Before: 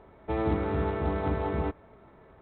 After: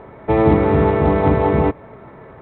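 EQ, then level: dynamic EQ 1500 Hz, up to -5 dB, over -51 dBFS, Q 2.3; ten-band EQ 125 Hz +10 dB, 250 Hz +5 dB, 500 Hz +7 dB, 1000 Hz +6 dB, 2000 Hz +8 dB; +6.5 dB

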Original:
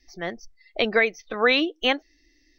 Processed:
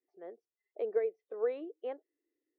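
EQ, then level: ladder band-pass 470 Hz, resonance 70%; -6.5 dB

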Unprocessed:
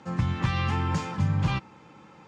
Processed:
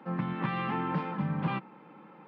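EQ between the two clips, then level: Gaussian blur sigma 3.2 samples; steep high-pass 160 Hz 36 dB/oct; 0.0 dB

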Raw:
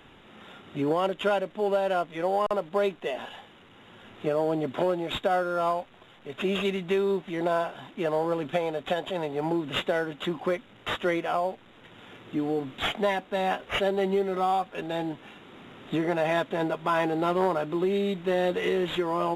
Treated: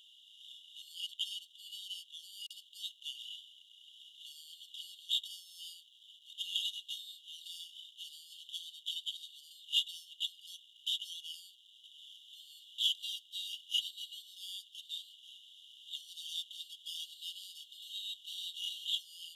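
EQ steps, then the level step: brick-wall FIR high-pass 2800 Hz; +2.5 dB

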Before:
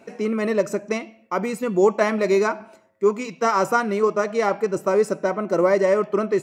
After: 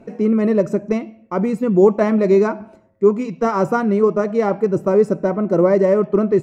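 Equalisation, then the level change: tilt -4.5 dB/oct; high shelf 4600 Hz +7.5 dB; -1.0 dB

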